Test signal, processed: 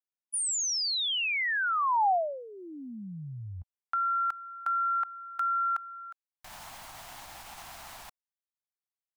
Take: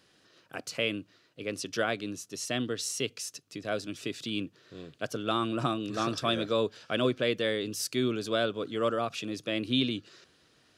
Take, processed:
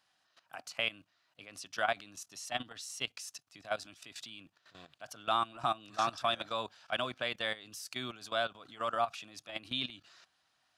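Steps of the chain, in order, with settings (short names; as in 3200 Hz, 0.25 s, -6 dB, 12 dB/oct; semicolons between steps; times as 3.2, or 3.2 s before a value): level quantiser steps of 15 dB; resonant low shelf 580 Hz -9 dB, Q 3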